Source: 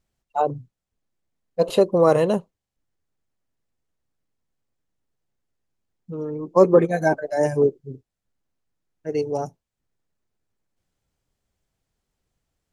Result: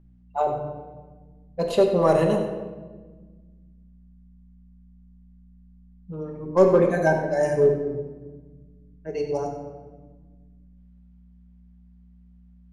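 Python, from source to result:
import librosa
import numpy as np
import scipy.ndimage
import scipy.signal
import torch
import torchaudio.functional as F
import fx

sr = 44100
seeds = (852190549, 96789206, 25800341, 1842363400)

p1 = fx.add_hum(x, sr, base_hz=60, snr_db=25)
p2 = fx.hum_notches(p1, sr, base_hz=50, count=10)
p3 = np.clip(p2, -10.0 ** (-13.0 / 20.0), 10.0 ** (-13.0 / 20.0))
p4 = p2 + F.gain(torch.from_numpy(p3), -9.5).numpy()
p5 = fx.env_lowpass(p4, sr, base_hz=2500.0, full_db=-15.5)
p6 = p5 + fx.echo_single(p5, sr, ms=95, db=-11.5, dry=0)
p7 = fx.room_shoebox(p6, sr, seeds[0], volume_m3=1100.0, walls='mixed', distance_m=1.2)
y = F.gain(torch.from_numpy(p7), -5.5).numpy()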